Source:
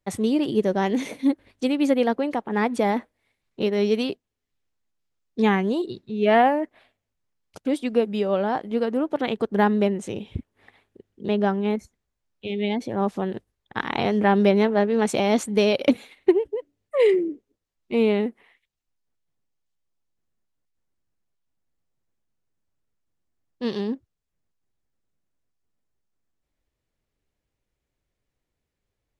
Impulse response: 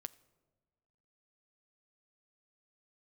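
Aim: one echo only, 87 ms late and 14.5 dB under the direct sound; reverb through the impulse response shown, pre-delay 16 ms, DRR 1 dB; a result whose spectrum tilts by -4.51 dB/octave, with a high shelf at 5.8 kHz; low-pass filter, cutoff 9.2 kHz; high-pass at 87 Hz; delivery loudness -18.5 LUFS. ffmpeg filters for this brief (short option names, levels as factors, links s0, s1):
-filter_complex "[0:a]highpass=87,lowpass=9200,highshelf=f=5800:g=6,aecho=1:1:87:0.188,asplit=2[s0][s1];[1:a]atrim=start_sample=2205,adelay=16[s2];[s1][s2]afir=irnorm=-1:irlink=0,volume=1.5[s3];[s0][s3]amix=inputs=2:normalize=0,volume=1.33"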